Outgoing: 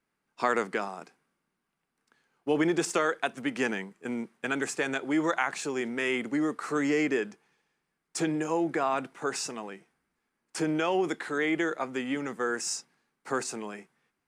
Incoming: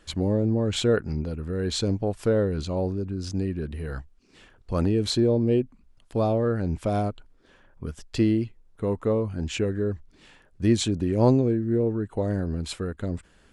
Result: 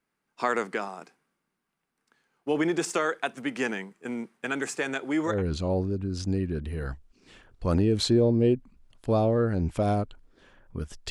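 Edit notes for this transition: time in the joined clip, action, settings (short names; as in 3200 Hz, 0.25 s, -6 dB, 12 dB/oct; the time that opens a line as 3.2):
outgoing
5.34 switch to incoming from 2.41 s, crossfade 0.18 s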